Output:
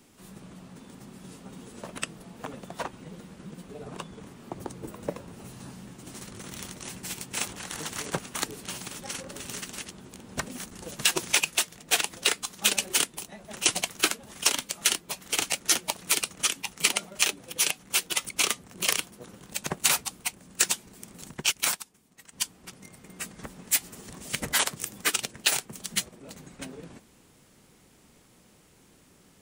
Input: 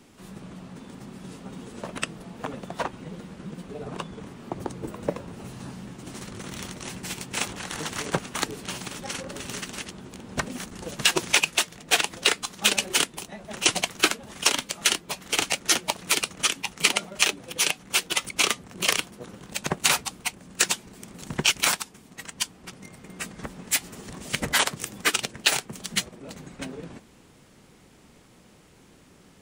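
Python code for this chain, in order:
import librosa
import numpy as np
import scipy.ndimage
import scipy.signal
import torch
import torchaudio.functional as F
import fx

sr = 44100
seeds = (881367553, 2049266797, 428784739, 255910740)

y = fx.high_shelf(x, sr, hz=7500.0, db=9.5)
y = fx.upward_expand(y, sr, threshold_db=-33.0, expansion=1.5, at=(21.29, 22.32), fade=0.02)
y = y * librosa.db_to_amplitude(-5.0)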